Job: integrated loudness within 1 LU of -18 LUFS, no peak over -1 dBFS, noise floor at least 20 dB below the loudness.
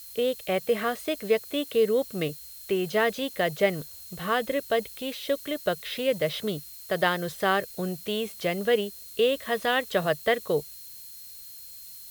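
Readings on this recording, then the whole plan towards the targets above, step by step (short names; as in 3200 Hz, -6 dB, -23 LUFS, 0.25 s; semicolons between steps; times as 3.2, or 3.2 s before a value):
steady tone 4200 Hz; tone level -52 dBFS; noise floor -44 dBFS; noise floor target -48 dBFS; loudness -27.5 LUFS; peak -9.0 dBFS; loudness target -18.0 LUFS
-> notch 4200 Hz, Q 30; denoiser 6 dB, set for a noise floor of -44 dBFS; gain +9.5 dB; limiter -1 dBFS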